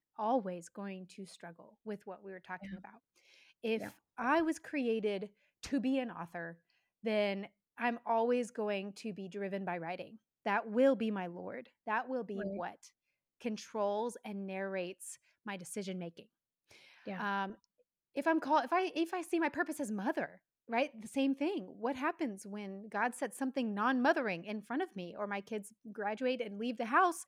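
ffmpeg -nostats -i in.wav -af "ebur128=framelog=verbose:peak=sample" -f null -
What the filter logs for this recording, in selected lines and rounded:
Integrated loudness:
  I:         -36.6 LUFS
  Threshold: -47.2 LUFS
Loudness range:
  LRA:         6.9 LU
  Threshold: -57.3 LUFS
  LRA low:   -42.1 LUFS
  LRA high:  -35.3 LUFS
Sample peak:
  Peak:      -15.3 dBFS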